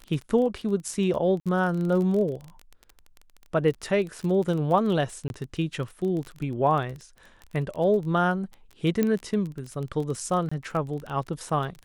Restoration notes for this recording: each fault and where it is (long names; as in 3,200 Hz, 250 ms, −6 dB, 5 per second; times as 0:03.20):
surface crackle 23 per second −31 dBFS
0:01.40–0:01.46: drop-out 57 ms
0:05.28–0:05.30: drop-out 21 ms
0:09.03: click −12 dBFS
0:10.49–0:10.52: drop-out 25 ms